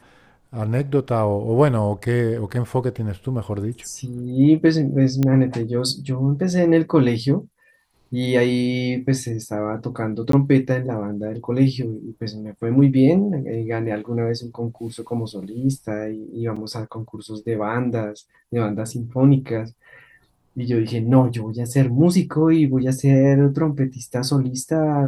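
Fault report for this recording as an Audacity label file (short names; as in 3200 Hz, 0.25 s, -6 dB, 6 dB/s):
5.230000	5.230000	pop -9 dBFS
10.320000	10.330000	gap 13 ms
16.560000	16.560000	gap 4.6 ms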